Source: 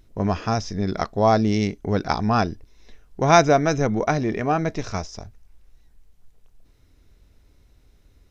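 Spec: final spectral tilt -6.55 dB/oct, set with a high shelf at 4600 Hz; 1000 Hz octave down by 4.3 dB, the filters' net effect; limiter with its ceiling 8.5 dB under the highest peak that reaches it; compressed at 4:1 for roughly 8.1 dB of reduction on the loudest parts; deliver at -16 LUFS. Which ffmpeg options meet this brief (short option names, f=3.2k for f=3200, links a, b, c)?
-af "equalizer=f=1k:t=o:g=-6.5,highshelf=f=4.6k:g=-4,acompressor=threshold=-22dB:ratio=4,volume=15.5dB,alimiter=limit=-4.5dB:level=0:latency=1"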